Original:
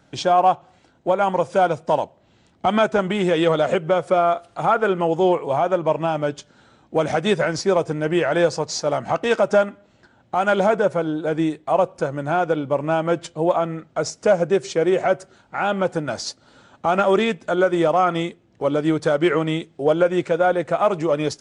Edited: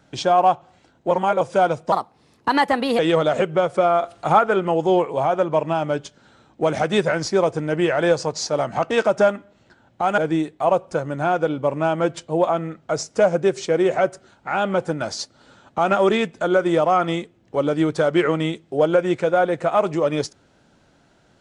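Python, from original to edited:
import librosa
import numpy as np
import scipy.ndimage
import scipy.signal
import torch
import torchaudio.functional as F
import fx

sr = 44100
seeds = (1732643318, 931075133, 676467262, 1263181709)

y = fx.edit(x, sr, fx.reverse_span(start_s=1.11, length_s=0.3),
    fx.speed_span(start_s=1.92, length_s=1.4, speed=1.31),
    fx.clip_gain(start_s=4.36, length_s=0.36, db=4.0),
    fx.cut(start_s=10.51, length_s=0.74), tone=tone)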